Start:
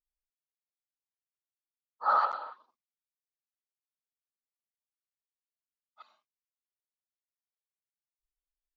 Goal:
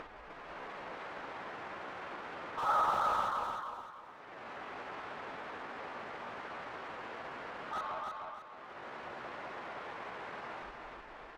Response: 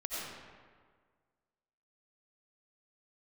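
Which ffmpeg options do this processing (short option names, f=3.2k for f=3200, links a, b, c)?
-filter_complex "[0:a]lowpass=1.6k,acompressor=mode=upward:threshold=-44dB:ratio=2.5,asplit=2[a][b];[b]highpass=f=720:p=1,volume=37dB,asoftclip=type=tanh:threshold=-29.5dB[c];[a][c]amix=inputs=2:normalize=0,lowpass=f=1.1k:p=1,volume=-6dB,atempo=0.77,aecho=1:1:306|612|918|1224:0.631|0.215|0.0729|0.0248,volume=2.5dB"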